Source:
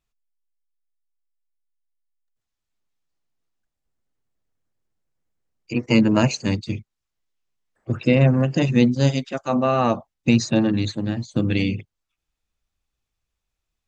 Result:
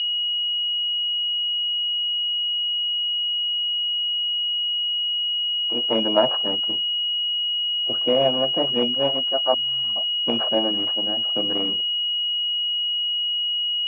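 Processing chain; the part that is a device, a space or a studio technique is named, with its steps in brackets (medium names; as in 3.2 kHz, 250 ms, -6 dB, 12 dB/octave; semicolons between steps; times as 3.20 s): 9.54–9.96 s: Chebyshev band-stop 190–3300 Hz, order 5; toy sound module (decimation joined by straight lines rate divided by 6×; class-D stage that switches slowly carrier 2.9 kHz; cabinet simulation 570–4300 Hz, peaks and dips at 670 Hz +6 dB, 1.2 kHz -3 dB, 2.1 kHz -6 dB); trim +4 dB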